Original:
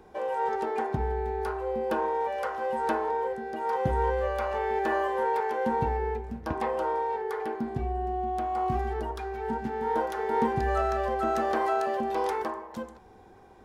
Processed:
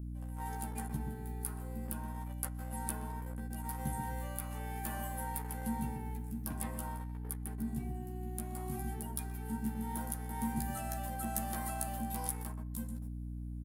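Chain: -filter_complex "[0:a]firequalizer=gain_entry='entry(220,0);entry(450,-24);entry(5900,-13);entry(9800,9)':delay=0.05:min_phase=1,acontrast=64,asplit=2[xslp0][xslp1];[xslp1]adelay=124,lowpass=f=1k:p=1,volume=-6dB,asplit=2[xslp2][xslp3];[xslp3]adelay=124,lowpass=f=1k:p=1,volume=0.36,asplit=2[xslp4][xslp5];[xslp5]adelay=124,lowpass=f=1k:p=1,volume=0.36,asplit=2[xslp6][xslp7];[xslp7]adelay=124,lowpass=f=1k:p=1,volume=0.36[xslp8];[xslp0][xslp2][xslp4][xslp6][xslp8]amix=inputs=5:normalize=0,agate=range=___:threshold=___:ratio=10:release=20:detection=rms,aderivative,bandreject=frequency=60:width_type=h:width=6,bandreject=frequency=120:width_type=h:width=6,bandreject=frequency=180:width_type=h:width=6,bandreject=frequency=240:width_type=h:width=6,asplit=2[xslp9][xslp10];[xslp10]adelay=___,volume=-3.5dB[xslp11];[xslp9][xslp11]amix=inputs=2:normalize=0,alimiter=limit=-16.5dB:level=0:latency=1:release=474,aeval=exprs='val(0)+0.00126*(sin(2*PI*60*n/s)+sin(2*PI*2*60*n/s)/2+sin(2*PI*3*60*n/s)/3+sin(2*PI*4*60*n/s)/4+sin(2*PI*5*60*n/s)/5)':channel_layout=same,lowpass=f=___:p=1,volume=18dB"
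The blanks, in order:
-14dB, -45dB, 14, 1.3k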